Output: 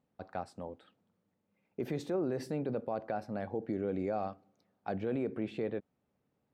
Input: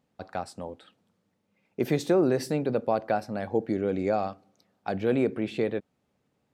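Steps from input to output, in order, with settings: treble shelf 3 kHz -10 dB; peak limiter -20.5 dBFS, peak gain reduction 8 dB; trim -5 dB

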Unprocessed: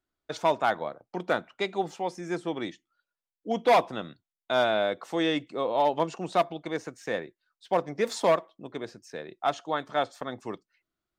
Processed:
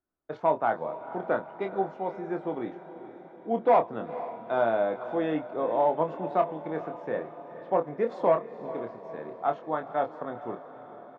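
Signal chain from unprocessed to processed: low-pass 1.2 kHz 12 dB/octave; bass shelf 120 Hz -6.5 dB; doubling 26 ms -7 dB; on a send: echo that smears into a reverb 468 ms, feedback 61%, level -13.5 dB

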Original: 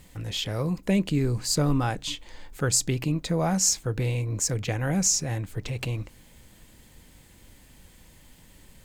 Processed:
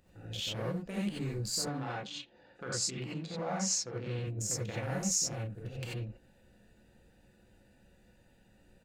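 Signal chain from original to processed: local Wiener filter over 41 samples; 1.59–4.19 s: band-pass 120–5000 Hz; speakerphone echo 80 ms, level -27 dB; peak limiter -21 dBFS, peak gain reduction 9 dB; bass shelf 270 Hz -11.5 dB; gated-style reverb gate 110 ms rising, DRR -7 dB; tape noise reduction on one side only encoder only; trim -8 dB

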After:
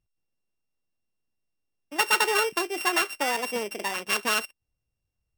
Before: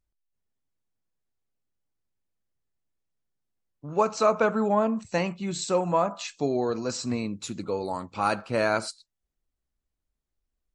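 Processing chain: sorted samples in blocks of 32 samples; speed mistake 7.5 ips tape played at 15 ips

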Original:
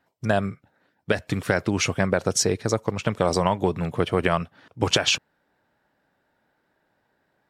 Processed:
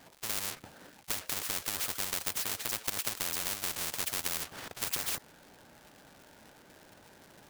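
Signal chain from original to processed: square wave that keeps the level; crackle 220 per s -51 dBFS; spectrum-flattening compressor 10:1; trim -4 dB

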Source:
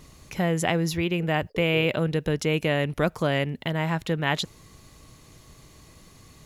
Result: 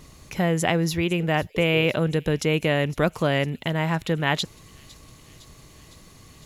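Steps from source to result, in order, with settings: feedback echo behind a high-pass 508 ms, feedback 72%, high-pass 5.5 kHz, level -15 dB; trim +2 dB

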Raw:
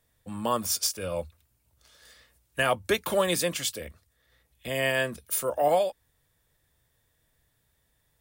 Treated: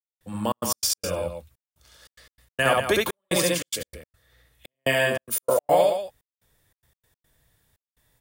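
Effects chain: on a send: loudspeakers at several distances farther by 23 m -1 dB, 63 m -8 dB; 5.10–5.60 s: on the sum: dynamic bell 670 Hz, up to +7 dB, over -42 dBFS, Q 1.3; trance gate "..xxx.x.x.xxxxx" 145 bpm -60 dB; trim +2 dB

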